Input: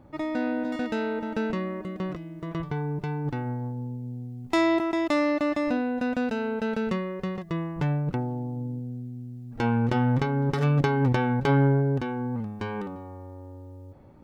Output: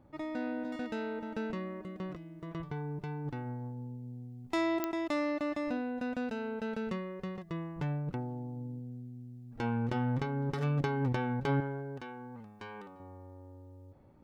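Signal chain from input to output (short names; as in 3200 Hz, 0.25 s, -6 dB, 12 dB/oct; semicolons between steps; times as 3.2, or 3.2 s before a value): 11.6–13 low shelf 420 Hz -11.5 dB; pops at 4.84, -9 dBFS; gain -8.5 dB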